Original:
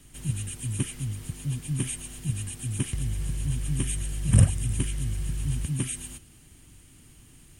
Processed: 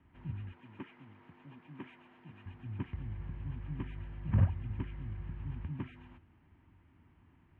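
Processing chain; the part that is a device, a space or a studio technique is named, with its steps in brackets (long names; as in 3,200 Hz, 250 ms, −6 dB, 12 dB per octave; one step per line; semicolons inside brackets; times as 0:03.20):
0:00.53–0:02.46: high-pass filter 290 Hz 12 dB per octave
bass cabinet (loudspeaker in its box 67–2,100 Hz, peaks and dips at 84 Hz +6 dB, 130 Hz −7 dB, 480 Hz −5 dB, 940 Hz +9 dB)
high-shelf EQ 11,000 Hz −5 dB
level −8 dB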